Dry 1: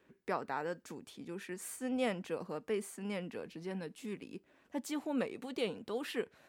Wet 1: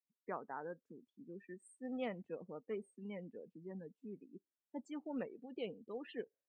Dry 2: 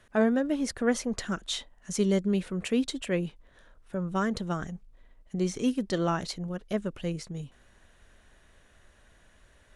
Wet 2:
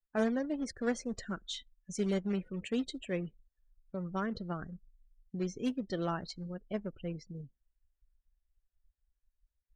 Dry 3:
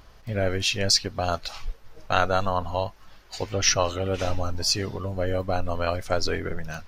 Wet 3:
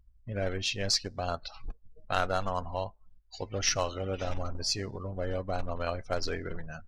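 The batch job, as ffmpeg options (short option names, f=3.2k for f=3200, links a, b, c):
-af "acrusher=bits=3:mode=log:mix=0:aa=0.000001,afftdn=nr=35:nf=-39,lowpass=10k,volume=-7dB"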